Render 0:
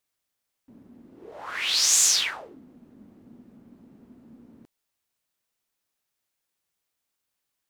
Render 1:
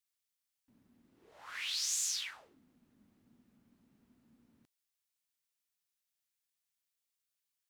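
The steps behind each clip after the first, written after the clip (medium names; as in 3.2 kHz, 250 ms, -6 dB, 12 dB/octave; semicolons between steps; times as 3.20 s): amplifier tone stack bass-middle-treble 5-5-5; compression 2:1, threshold -39 dBFS, peak gain reduction 9.5 dB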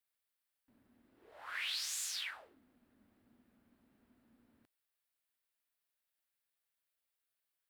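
fifteen-band graphic EQ 160 Hz -9 dB, 630 Hz +4 dB, 1.6 kHz +4 dB, 6.3 kHz -9 dB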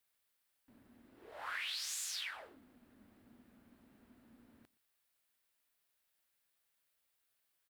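delay 120 ms -22 dB; compression 4:1, threshold -46 dBFS, peak gain reduction 9 dB; trim +6.5 dB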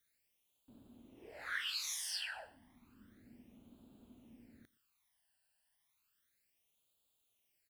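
phase shifter stages 12, 0.32 Hz, lowest notch 370–1900 Hz; trim +3.5 dB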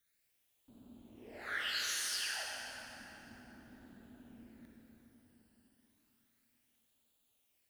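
reverberation RT60 4.2 s, pre-delay 43 ms, DRR -2 dB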